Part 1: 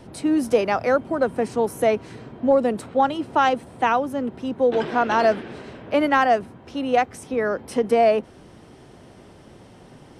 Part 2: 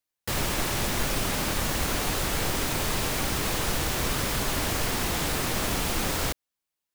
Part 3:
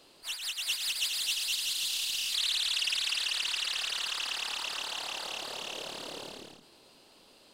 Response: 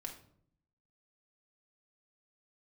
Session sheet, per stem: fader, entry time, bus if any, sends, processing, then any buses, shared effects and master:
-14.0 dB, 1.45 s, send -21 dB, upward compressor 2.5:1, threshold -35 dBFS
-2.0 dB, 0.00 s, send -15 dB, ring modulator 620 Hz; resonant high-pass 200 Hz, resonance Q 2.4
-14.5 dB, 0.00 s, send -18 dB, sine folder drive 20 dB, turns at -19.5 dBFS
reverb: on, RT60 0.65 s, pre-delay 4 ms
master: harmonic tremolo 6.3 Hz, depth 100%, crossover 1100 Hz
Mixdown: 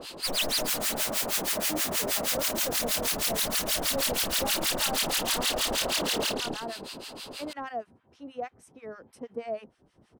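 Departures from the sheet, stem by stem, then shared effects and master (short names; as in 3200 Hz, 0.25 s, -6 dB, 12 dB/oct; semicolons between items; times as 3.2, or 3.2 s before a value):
stem 1: send off; stem 3 -14.5 dB -> -3.0 dB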